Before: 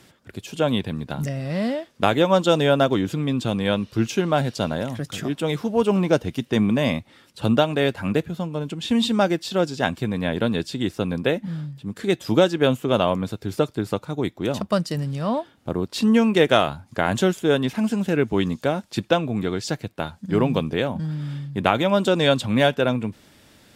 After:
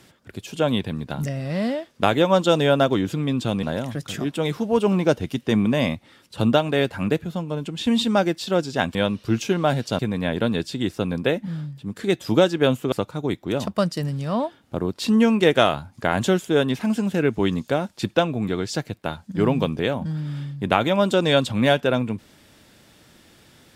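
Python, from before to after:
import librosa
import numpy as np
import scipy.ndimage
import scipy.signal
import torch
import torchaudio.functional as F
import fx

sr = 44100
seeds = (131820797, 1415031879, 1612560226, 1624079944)

y = fx.edit(x, sr, fx.move(start_s=3.63, length_s=1.04, to_s=9.99),
    fx.cut(start_s=12.92, length_s=0.94), tone=tone)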